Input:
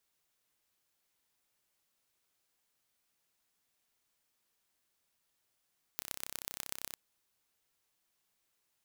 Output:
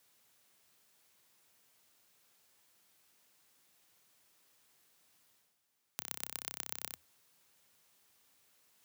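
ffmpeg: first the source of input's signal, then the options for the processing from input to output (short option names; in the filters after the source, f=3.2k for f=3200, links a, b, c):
-f lavfi -i "aevalsrc='0.355*eq(mod(n,1349),0)*(0.5+0.5*eq(mod(n,5396),0))':d=0.96:s=44100"
-af "areverse,acompressor=mode=upward:threshold=-59dB:ratio=2.5,areverse,afreqshift=81"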